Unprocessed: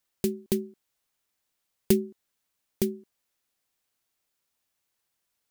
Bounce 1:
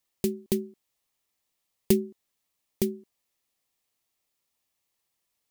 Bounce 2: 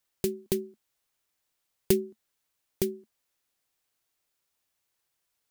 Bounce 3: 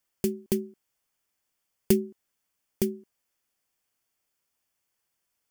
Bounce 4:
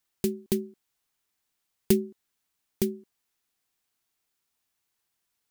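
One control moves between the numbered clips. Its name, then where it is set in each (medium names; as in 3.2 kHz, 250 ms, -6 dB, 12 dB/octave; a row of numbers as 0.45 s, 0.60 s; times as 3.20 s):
band-stop, frequency: 1.5 kHz, 220 Hz, 3.9 kHz, 560 Hz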